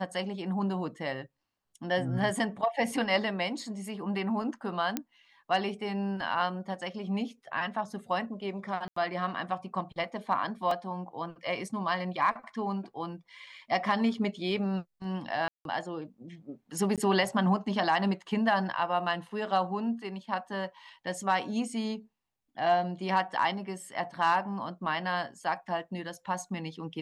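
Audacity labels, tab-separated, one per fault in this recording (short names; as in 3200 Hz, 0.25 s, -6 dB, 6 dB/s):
4.970000	4.970000	pop -14 dBFS
8.880000	8.960000	gap 84 ms
10.710000	10.710000	gap 3.1 ms
15.480000	15.650000	gap 0.172 s
16.960000	16.980000	gap 17 ms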